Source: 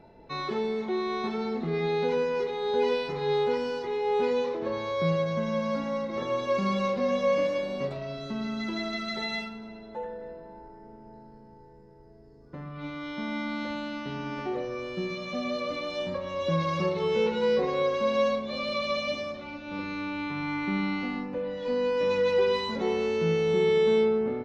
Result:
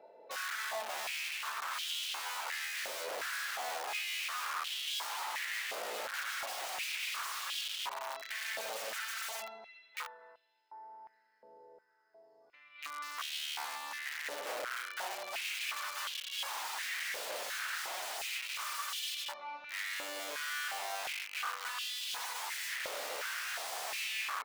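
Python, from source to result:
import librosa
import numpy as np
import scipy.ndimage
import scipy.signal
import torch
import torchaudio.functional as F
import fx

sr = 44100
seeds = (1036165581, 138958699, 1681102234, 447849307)

y = (np.mod(10.0 ** (29.5 / 20.0) * x + 1.0, 2.0) - 1.0) / 10.0 ** (29.5 / 20.0)
y = fx.filter_held_highpass(y, sr, hz=2.8, low_hz=550.0, high_hz=3100.0)
y = F.gain(torch.from_numpy(y), -8.0).numpy()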